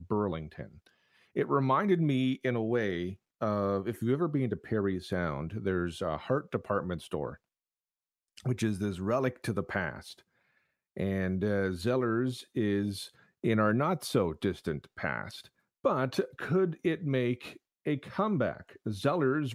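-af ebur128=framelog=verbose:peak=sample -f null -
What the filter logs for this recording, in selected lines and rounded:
Integrated loudness:
  I:         -31.6 LUFS
  Threshold: -42.1 LUFS
Loudness range:
  LRA:         4.5 LU
  Threshold: -52.3 LUFS
  LRA low:   -35.0 LUFS
  LRA high:  -30.5 LUFS
Sample peak:
  Peak:      -13.6 dBFS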